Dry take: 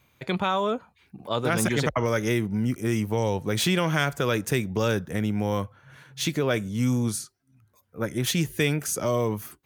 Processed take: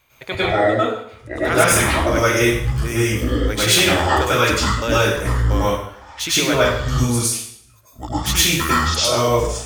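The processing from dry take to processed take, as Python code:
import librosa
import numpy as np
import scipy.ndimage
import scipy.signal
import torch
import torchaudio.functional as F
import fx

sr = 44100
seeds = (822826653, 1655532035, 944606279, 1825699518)

y = fx.pitch_trill(x, sr, semitones=-10.5, every_ms=344)
y = fx.peak_eq(y, sr, hz=180.0, db=-14.0, octaves=1.7)
y = fx.rev_plate(y, sr, seeds[0], rt60_s=0.65, hf_ratio=0.95, predelay_ms=90, drr_db=-9.0)
y = y * 10.0 ** (4.0 / 20.0)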